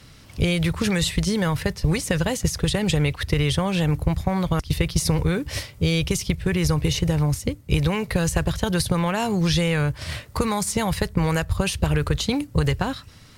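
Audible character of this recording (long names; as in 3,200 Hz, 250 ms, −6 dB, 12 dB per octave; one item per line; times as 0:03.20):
background noise floor −47 dBFS
spectral slope −5.0 dB per octave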